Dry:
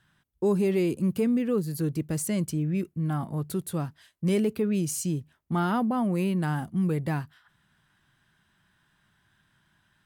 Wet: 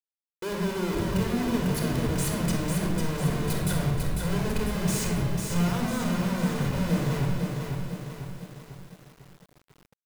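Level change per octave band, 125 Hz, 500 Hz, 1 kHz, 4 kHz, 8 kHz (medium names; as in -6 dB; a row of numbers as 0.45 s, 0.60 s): +3.0 dB, -2.0 dB, +0.5 dB, +8.5 dB, +2.5 dB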